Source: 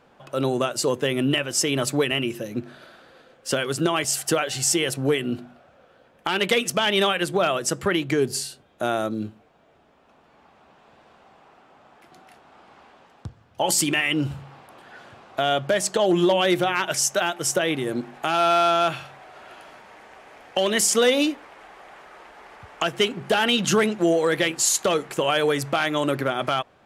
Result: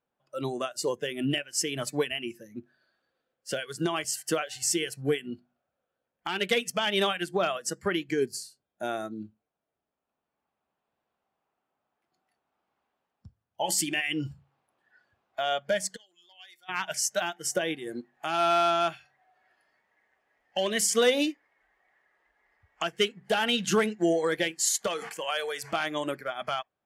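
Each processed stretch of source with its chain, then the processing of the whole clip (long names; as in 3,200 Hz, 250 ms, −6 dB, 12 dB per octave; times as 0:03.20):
0:15.96–0:16.69: low-pass filter 3,000 Hz 6 dB per octave + first difference
0:24.87–0:25.73: high-pass filter 120 Hz + low-shelf EQ 430 Hz −10.5 dB + level that may fall only so fast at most 39 dB per second
whole clip: noise reduction from a noise print of the clip's start 14 dB; expander for the loud parts 1.5 to 1, over −39 dBFS; level −3 dB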